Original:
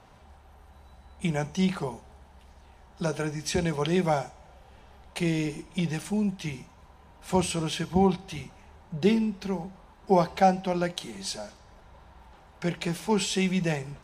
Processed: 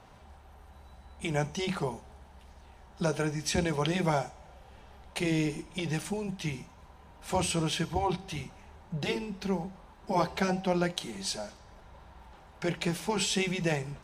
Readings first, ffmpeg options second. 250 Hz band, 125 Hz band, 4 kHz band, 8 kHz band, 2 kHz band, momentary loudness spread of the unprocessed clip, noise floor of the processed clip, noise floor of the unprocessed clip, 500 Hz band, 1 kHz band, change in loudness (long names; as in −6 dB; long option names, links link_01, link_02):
−5.0 dB, −3.0 dB, 0.0 dB, 0.0 dB, 0.0 dB, 15 LU, −55 dBFS, −55 dBFS, −4.0 dB, −4.5 dB, −3.5 dB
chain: -af "afftfilt=real='re*lt(hypot(re,im),0.562)':imag='im*lt(hypot(re,im),0.562)':win_size=1024:overlap=0.75"